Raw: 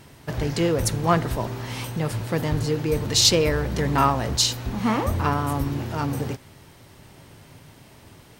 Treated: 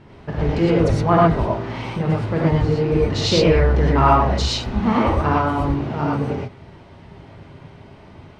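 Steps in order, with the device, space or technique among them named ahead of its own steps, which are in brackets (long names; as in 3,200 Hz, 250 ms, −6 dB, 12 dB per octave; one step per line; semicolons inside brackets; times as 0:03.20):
phone in a pocket (low-pass filter 3,900 Hz 12 dB per octave; high-shelf EQ 2,200 Hz −10.5 dB)
0:04.27–0:05.60: parametric band 13,000 Hz +3.5 dB 2.6 octaves
reverb whose tail is shaped and stops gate 140 ms rising, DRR −4.5 dB
level +2 dB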